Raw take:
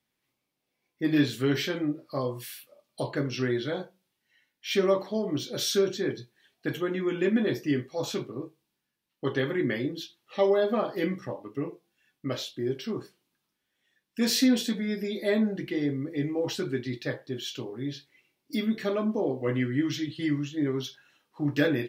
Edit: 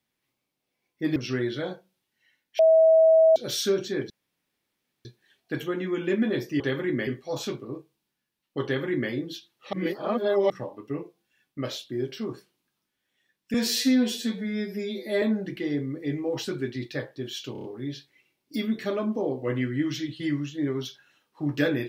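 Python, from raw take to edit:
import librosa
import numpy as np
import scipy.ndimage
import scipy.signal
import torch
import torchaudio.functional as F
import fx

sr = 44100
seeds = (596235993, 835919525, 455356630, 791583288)

y = fx.edit(x, sr, fx.cut(start_s=1.16, length_s=2.09),
    fx.bleep(start_s=4.68, length_s=0.77, hz=645.0, db=-13.5),
    fx.insert_room_tone(at_s=6.19, length_s=0.95),
    fx.duplicate(start_s=9.31, length_s=0.47, to_s=7.74),
    fx.reverse_span(start_s=10.4, length_s=0.77),
    fx.stretch_span(start_s=14.21, length_s=1.12, factor=1.5),
    fx.stutter(start_s=17.63, slice_s=0.03, count=5), tone=tone)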